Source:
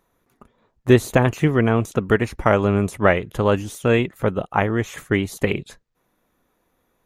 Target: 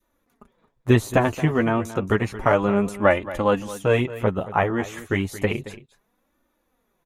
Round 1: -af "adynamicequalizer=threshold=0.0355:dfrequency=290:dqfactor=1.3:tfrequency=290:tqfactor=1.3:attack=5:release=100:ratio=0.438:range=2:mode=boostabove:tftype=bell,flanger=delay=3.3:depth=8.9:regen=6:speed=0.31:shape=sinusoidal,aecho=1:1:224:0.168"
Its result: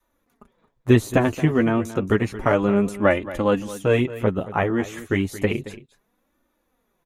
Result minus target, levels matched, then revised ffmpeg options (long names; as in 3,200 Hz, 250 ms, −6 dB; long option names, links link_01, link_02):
1,000 Hz band −3.5 dB
-af "adynamicequalizer=threshold=0.0355:dfrequency=890:dqfactor=1.3:tfrequency=890:tqfactor=1.3:attack=5:release=100:ratio=0.438:range=2:mode=boostabove:tftype=bell,flanger=delay=3.3:depth=8.9:regen=6:speed=0.31:shape=sinusoidal,aecho=1:1:224:0.168"